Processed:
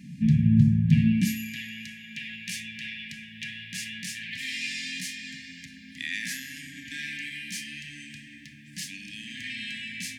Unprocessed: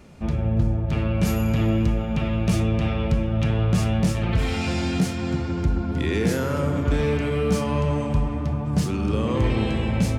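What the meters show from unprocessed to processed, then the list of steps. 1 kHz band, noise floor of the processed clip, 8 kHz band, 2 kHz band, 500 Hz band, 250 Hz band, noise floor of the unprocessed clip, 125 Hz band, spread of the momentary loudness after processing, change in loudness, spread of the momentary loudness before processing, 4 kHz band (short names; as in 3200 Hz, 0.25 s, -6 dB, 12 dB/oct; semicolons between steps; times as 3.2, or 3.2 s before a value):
under -40 dB, -48 dBFS, 0.0 dB, +0.5 dB, under -40 dB, -4.5 dB, -27 dBFS, -6.5 dB, 20 LU, -5.5 dB, 3 LU, +0.5 dB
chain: HPF 88 Hz; low shelf 160 Hz +6 dB; high-pass sweep 160 Hz -> 790 Hz, 1.01–1.61; brick-wall FIR band-stop 290–1600 Hz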